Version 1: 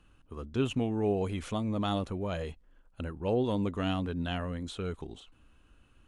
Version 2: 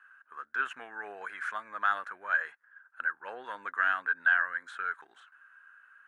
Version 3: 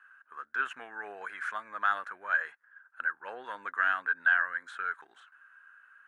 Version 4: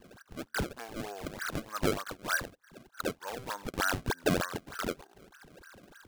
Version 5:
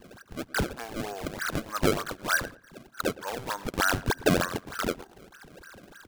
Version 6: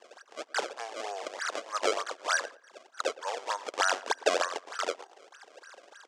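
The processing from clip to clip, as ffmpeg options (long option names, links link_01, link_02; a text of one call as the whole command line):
ffmpeg -i in.wav -af "highpass=frequency=1600:width_type=q:width=9.6,highshelf=frequency=2100:width_type=q:width=1.5:gain=-12.5,volume=3.5dB" out.wav
ffmpeg -i in.wav -af anull out.wav
ffmpeg -i in.wav -filter_complex "[0:a]acrossover=split=1400[link_01][link_02];[link_02]acompressor=threshold=-43dB:ratio=6[link_03];[link_01][link_03]amix=inputs=2:normalize=0,acrusher=samples=28:mix=1:aa=0.000001:lfo=1:lforange=44.8:lforate=3.3,volume=2.5dB" out.wav
ffmpeg -i in.wav -filter_complex "[0:a]asplit=2[link_01][link_02];[link_02]adelay=114,lowpass=frequency=2200:poles=1,volume=-18dB,asplit=2[link_03][link_04];[link_04]adelay=114,lowpass=frequency=2200:poles=1,volume=0.22[link_05];[link_01][link_03][link_05]amix=inputs=3:normalize=0,volume=5dB" out.wav
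ffmpeg -i in.wav -af "highpass=frequency=500:width=0.5412,highpass=frequency=500:width=1.3066,equalizer=frequency=1500:width_type=q:width=4:gain=-6,equalizer=frequency=2400:width_type=q:width=4:gain=-3,equalizer=frequency=4000:width_type=q:width=4:gain=-4,lowpass=frequency=7500:width=0.5412,lowpass=frequency=7500:width=1.3066,volume=2dB" out.wav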